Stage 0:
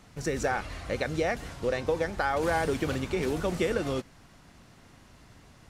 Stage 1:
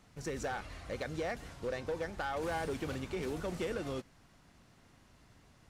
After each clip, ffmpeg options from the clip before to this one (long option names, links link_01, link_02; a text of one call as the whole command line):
ffmpeg -i in.wav -af "asoftclip=type=hard:threshold=-23dB,volume=-8dB" out.wav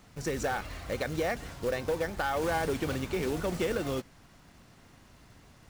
ffmpeg -i in.wav -af "acrusher=bits=4:mode=log:mix=0:aa=0.000001,volume=6dB" out.wav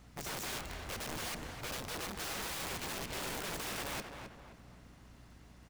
ffmpeg -i in.wav -filter_complex "[0:a]aeval=exprs='(mod(35.5*val(0)+1,2)-1)/35.5':channel_layout=same,asplit=2[link_01][link_02];[link_02]adelay=263,lowpass=frequency=2400:poles=1,volume=-6dB,asplit=2[link_03][link_04];[link_04]adelay=263,lowpass=frequency=2400:poles=1,volume=0.43,asplit=2[link_05][link_06];[link_06]adelay=263,lowpass=frequency=2400:poles=1,volume=0.43,asplit=2[link_07][link_08];[link_08]adelay=263,lowpass=frequency=2400:poles=1,volume=0.43,asplit=2[link_09][link_10];[link_10]adelay=263,lowpass=frequency=2400:poles=1,volume=0.43[link_11];[link_01][link_03][link_05][link_07][link_09][link_11]amix=inputs=6:normalize=0,aeval=exprs='val(0)+0.002*(sin(2*PI*60*n/s)+sin(2*PI*2*60*n/s)/2+sin(2*PI*3*60*n/s)/3+sin(2*PI*4*60*n/s)/4+sin(2*PI*5*60*n/s)/5)':channel_layout=same,volume=-4.5dB" out.wav